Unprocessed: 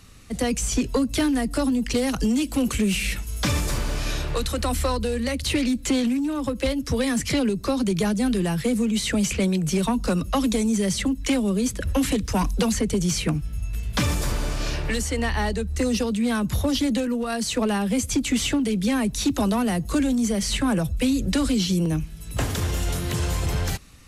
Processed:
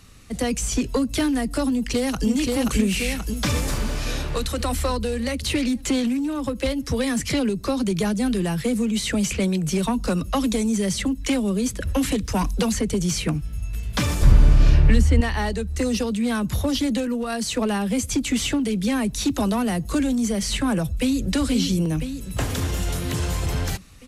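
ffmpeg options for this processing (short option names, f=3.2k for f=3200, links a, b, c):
-filter_complex "[0:a]asplit=2[a][b];[b]afade=t=in:st=1.73:d=0.01,afade=t=out:st=2.27:d=0.01,aecho=0:1:530|1060|1590|2120|2650|3180|3710|4240|4770:0.794328|0.476597|0.285958|0.171575|0.102945|0.061767|0.0370602|0.0222361|0.0133417[c];[a][c]amix=inputs=2:normalize=0,asettb=1/sr,asplit=3[d][e][f];[d]atrim=end=14.224[g];[e]atrim=start=14.22:end=15.21,asetpts=PTS-STARTPTS,afade=t=in:d=0.004:c=qsin,afade=t=out:st=0.986:d=0.004:c=qsin,bass=f=250:g=14,treble=f=4k:g=-7[h];[f]atrim=start=15.206[i];[g][h]acrossfade=d=0.004:c1=hsin:c2=qsin[j];[j][i]acrossfade=d=0.004:c1=qsin:c2=hsin,asplit=2[k][l];[l]afade=t=in:st=20.89:d=0.01,afade=t=out:st=21.32:d=0.01,aecho=0:1:500|1000|1500|2000|2500|3000|3500|4000|4500|5000:0.501187|0.325772|0.211752|0.137639|0.0894651|0.0581523|0.037799|0.0245693|0.0159701|0.0103805[m];[k][m]amix=inputs=2:normalize=0"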